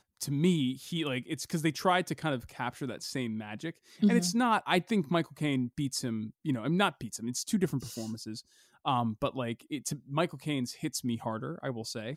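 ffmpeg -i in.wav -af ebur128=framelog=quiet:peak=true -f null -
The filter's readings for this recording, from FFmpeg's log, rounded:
Integrated loudness:
  I:         -31.9 LUFS
  Threshold: -42.1 LUFS
Loudness range:
  LRA:         4.3 LU
  Threshold: -52.0 LUFS
  LRA low:   -34.4 LUFS
  LRA high:  -30.1 LUFS
True peak:
  Peak:      -12.2 dBFS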